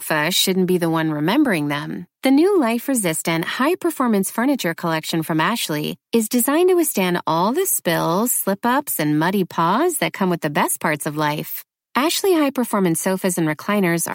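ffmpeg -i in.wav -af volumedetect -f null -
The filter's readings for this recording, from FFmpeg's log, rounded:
mean_volume: -19.2 dB
max_volume: -2.3 dB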